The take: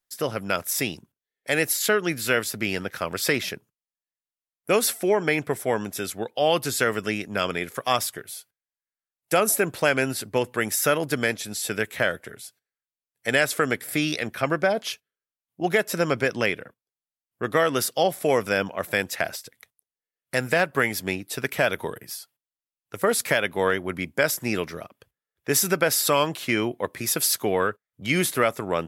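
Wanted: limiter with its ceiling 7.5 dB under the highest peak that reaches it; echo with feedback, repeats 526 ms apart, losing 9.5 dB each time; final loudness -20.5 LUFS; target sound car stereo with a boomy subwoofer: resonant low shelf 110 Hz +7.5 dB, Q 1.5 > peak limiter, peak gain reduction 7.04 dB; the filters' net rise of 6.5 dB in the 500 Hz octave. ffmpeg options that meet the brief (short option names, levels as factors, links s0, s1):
-af "equalizer=f=500:t=o:g=8,alimiter=limit=0.282:level=0:latency=1,lowshelf=f=110:t=q:w=1.5:g=7.5,aecho=1:1:526|1052|1578|2104:0.335|0.111|0.0365|0.012,volume=2.24,alimiter=limit=0.355:level=0:latency=1"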